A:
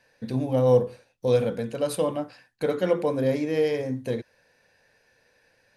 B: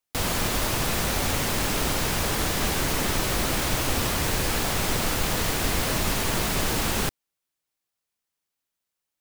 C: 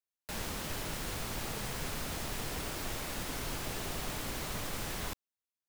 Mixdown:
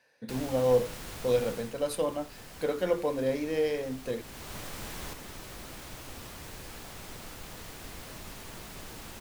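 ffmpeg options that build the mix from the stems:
-filter_complex "[0:a]highpass=f=260:p=1,volume=-3.5dB,asplit=2[a][b];[1:a]adelay=2200,volume=-19dB[c];[2:a]volume=5dB,afade=t=out:st=1.51:d=0.23:silence=0.398107,afade=t=in:st=4.2:d=0.38:silence=0.375837[d];[b]apad=whole_len=503075[e];[c][e]sidechaincompress=threshold=-35dB:ratio=8:attack=16:release=1490[f];[a][f][d]amix=inputs=3:normalize=0"

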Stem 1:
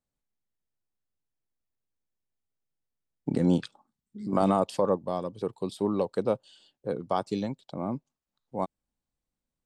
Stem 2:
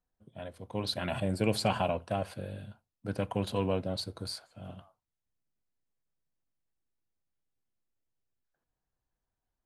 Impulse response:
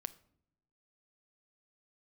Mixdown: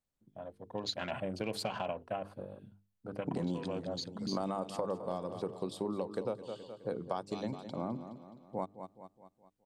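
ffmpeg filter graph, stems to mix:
-filter_complex "[0:a]volume=-1.5dB,asplit=2[a][b];[b]volume=-14dB[c];[1:a]afwtdn=0.00501,highpass=f=240:p=1,tremolo=f=7.9:d=0.35,volume=0.5dB[d];[c]aecho=0:1:210|420|630|840|1050|1260|1470:1|0.5|0.25|0.125|0.0625|0.0312|0.0156[e];[a][d][e]amix=inputs=3:normalize=0,bandreject=f=50:t=h:w=6,bandreject=f=100:t=h:w=6,bandreject=f=150:t=h:w=6,bandreject=f=200:t=h:w=6,bandreject=f=250:t=h:w=6,bandreject=f=300:t=h:w=6,bandreject=f=350:t=h:w=6,bandreject=f=400:t=h:w=6,bandreject=f=450:t=h:w=6,acompressor=threshold=-32dB:ratio=6"

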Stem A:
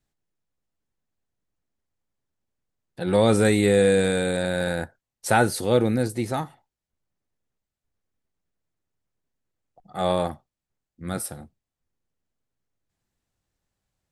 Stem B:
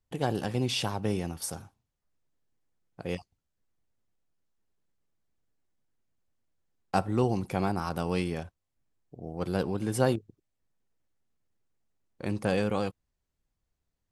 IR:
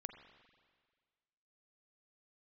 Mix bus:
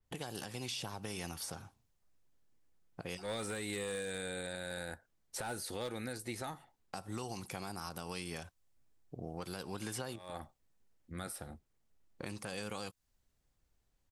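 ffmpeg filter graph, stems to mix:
-filter_complex "[0:a]asubboost=boost=4:cutoff=57,asoftclip=type=hard:threshold=-13dB,adelay=100,volume=-5.5dB[a];[1:a]adynamicequalizer=threshold=0.00282:dfrequency=4100:dqfactor=0.7:tfrequency=4100:tqfactor=0.7:attack=5:release=100:ratio=0.375:range=3:mode=boostabove:tftype=highshelf,volume=2dB,asplit=2[b][c];[c]apad=whole_len=626752[d];[a][d]sidechaincompress=threshold=-41dB:ratio=10:attack=23:release=221[e];[e][b]amix=inputs=2:normalize=0,acrossover=split=910|4300[f][g][h];[f]acompressor=threshold=-41dB:ratio=4[i];[g]acompressor=threshold=-42dB:ratio=4[j];[h]acompressor=threshold=-44dB:ratio=4[k];[i][j][k]amix=inputs=3:normalize=0,alimiter=level_in=5dB:limit=-24dB:level=0:latency=1:release=184,volume=-5dB"

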